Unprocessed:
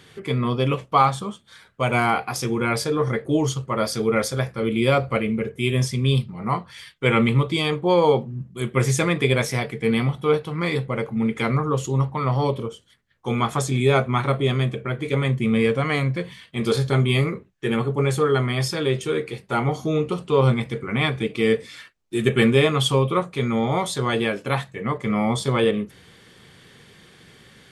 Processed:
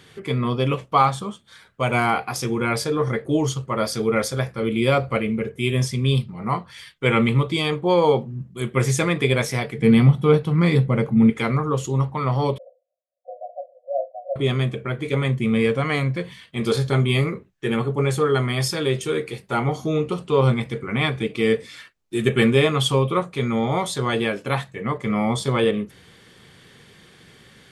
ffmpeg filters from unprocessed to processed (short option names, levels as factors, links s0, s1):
-filter_complex "[0:a]asettb=1/sr,asplit=3[s0][s1][s2];[s0]atrim=end=9.784[s3];[s1]atrim=start=9.78:end=11.3,asetpts=PTS-STARTPTS,afade=t=in:d=0.004:c=qsin,afade=t=out:st=1.516:d=0.004:c=qsin,equalizer=f=160:w=0.72:g=10[s4];[s2]atrim=start=11.296[s5];[s3][s4]acrossfade=d=0.004:c1=hsin:c2=qsin[s6];[s6][s5]acrossfade=d=0.004:c1=qsin:c2=hsin,asettb=1/sr,asplit=3[s7][s8][s9];[s7]atrim=end=12.584[s10];[s8]atrim=start=12.58:end=14.36,asetpts=PTS-STARTPTS,afade=t=in:d=0.004:c=qsin,afade=t=out:st=1.776:d=0.004:c=qsin,asuperpass=centerf=610:order=20:qfactor=2.6[s11];[s9]atrim=start=14.356[s12];[s10][s11]acrossfade=d=0.004:c1=hsin:c2=qsin[s13];[s13][s12]acrossfade=d=0.004:c1=qsin:c2=hsin,asettb=1/sr,asplit=3[s14][s15][s16];[s14]atrim=end=18.354[s17];[s15]atrim=start=18.35:end=19.5,asetpts=PTS-STARTPTS,afade=t=in:d=0.004:c=qsin,afade=t=out:st=1.146:d=0.004:c=qsin,highshelf=f=6100:g=5.5[s18];[s16]atrim=start=19.496[s19];[s17][s18]acrossfade=d=0.004:c1=hsin:c2=qsin[s20];[s20][s19]acrossfade=d=0.004:c1=qsin:c2=hsin"